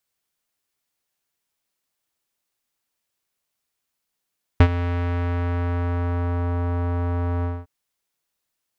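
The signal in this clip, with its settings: synth note square F2 12 dB/octave, low-pass 1.2 kHz, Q 1.1, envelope 1 oct, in 1.93 s, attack 4.1 ms, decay 0.07 s, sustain -14.5 dB, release 0.22 s, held 2.84 s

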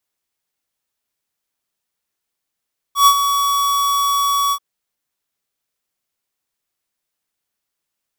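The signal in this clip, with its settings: ADSR square 1.13 kHz, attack 116 ms, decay 70 ms, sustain -9 dB, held 1.57 s, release 65 ms -8 dBFS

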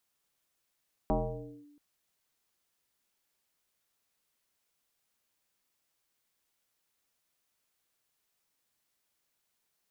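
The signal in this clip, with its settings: FM tone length 0.68 s, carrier 292 Hz, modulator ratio 0.57, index 3.5, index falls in 0.56 s linear, decay 1.11 s, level -23 dB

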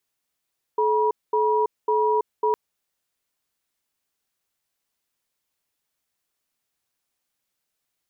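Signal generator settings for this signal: cadence 430 Hz, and 963 Hz, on 0.33 s, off 0.22 s, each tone -20.5 dBFS 1.76 s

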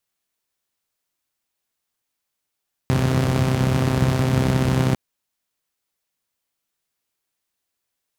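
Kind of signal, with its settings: four-cylinder engine model, steady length 2.05 s, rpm 3900, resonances 100/150 Hz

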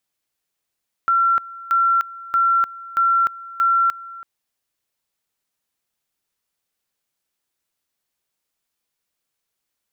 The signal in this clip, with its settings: two-level tone 1.36 kHz -13.5 dBFS, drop 19.5 dB, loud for 0.30 s, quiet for 0.33 s, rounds 5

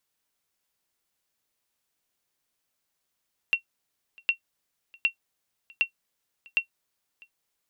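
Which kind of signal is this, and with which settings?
sonar ping 2.73 kHz, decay 0.10 s, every 0.76 s, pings 5, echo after 0.65 s, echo -27.5 dB -13 dBFS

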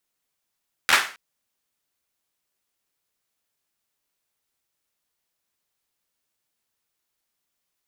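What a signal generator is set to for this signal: hand clap length 0.27 s, apart 12 ms, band 1.6 kHz, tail 0.38 s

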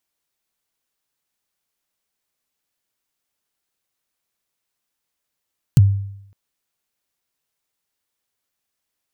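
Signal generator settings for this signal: kick drum length 0.56 s, from 160 Hz, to 99 Hz, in 28 ms, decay 0.75 s, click on, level -4.5 dB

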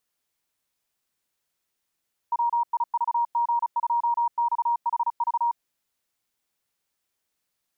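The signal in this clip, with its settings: Morse "WIVG2XHV" 35 wpm 944 Hz -20 dBFS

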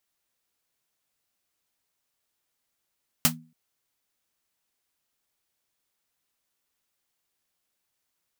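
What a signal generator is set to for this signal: snare drum length 0.28 s, tones 160 Hz, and 240 Hz, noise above 540 Hz, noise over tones 11 dB, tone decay 0.39 s, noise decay 0.12 s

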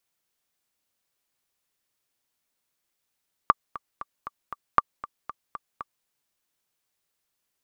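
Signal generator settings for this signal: metronome 234 bpm, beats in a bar 5, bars 2, 1.17 kHz, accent 18 dB -3 dBFS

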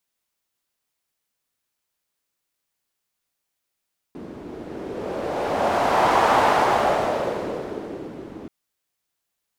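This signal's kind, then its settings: wind-like swept noise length 4.33 s, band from 310 Hz, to 840 Hz, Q 2.1, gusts 1, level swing 19 dB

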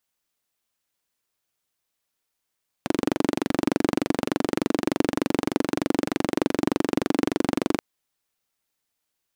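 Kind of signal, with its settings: single-cylinder engine model, steady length 4.93 s, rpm 2800, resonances 290 Hz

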